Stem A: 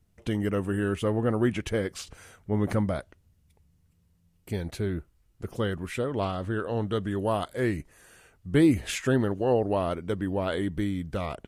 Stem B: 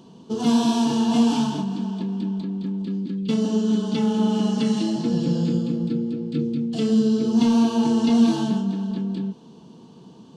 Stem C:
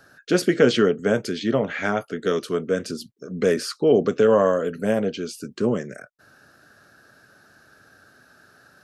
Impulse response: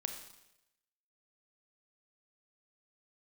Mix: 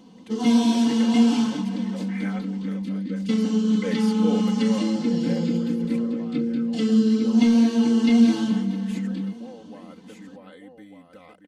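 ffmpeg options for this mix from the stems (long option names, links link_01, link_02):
-filter_complex "[0:a]acompressor=threshold=-38dB:ratio=3,highpass=180,bandreject=frequency=2200:width=5.9,volume=-9.5dB,asplit=3[link_01][link_02][link_03];[link_02]volume=-7.5dB[link_04];[1:a]volume=-4dB,asplit=2[link_05][link_06];[link_06]volume=-24dB[link_07];[2:a]adelay=400,volume=-13dB,asplit=2[link_08][link_09];[link_09]volume=-18.5dB[link_10];[link_03]apad=whole_len=407097[link_11];[link_08][link_11]sidechaincompress=threshold=-54dB:ratio=8:attack=16:release=900[link_12];[link_04][link_07][link_10]amix=inputs=3:normalize=0,aecho=0:1:1198:1[link_13];[link_01][link_05][link_12][link_13]amix=inputs=4:normalize=0,equalizer=frequency=2100:width=6:gain=12.5,aecho=1:1:3.9:0.87"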